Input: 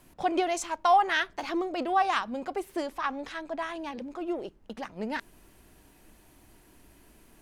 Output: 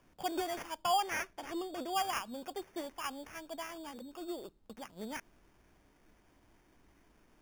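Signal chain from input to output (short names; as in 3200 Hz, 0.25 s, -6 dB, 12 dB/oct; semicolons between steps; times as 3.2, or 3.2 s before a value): sample-and-hold 11×; 0.82–1.95 high shelf 8300 Hz -5.5 dB; gain -9 dB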